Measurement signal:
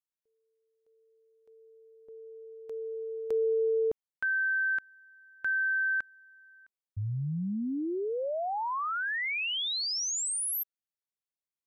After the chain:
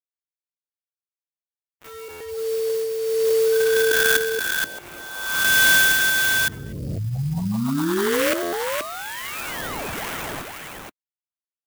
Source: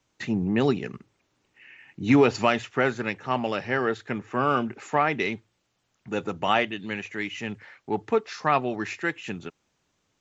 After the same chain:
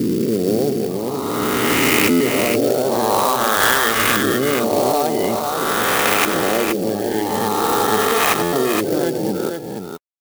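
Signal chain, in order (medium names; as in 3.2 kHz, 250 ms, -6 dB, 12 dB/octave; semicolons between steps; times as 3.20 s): reverse spectral sustain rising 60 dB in 2.57 s; in parallel at +2.5 dB: peak limiter -12.5 dBFS; on the sum: LFO low-pass saw up 0.48 Hz 310–2600 Hz; bass shelf 64 Hz -7 dB; compression, threshold -16 dBFS; bit crusher 7-bit; on a send: multi-tap echo 94/475 ms -10.5/-5 dB; on the sum: spectral gate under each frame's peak -25 dB strong; treble shelf 2.1 kHz +10 dB; sample-rate reducer 5 kHz, jitter 0%; buffer glitch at 2.10/8.42 s, samples 512, times 8; sampling jitter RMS 0.042 ms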